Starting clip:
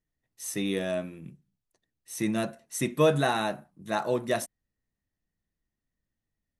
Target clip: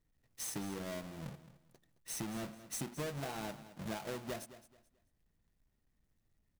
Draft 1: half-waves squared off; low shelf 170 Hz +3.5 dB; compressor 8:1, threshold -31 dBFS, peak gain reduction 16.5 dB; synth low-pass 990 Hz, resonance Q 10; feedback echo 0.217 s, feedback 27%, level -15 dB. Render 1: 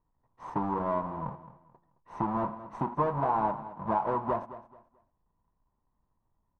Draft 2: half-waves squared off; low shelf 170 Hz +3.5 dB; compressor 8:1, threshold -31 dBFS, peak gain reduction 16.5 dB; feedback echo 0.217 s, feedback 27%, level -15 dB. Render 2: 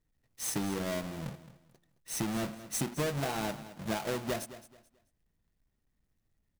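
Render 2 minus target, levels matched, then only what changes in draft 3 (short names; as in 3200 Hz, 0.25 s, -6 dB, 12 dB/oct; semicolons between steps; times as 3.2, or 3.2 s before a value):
compressor: peak gain reduction -8 dB
change: compressor 8:1, threshold -40 dBFS, peak gain reduction 24.5 dB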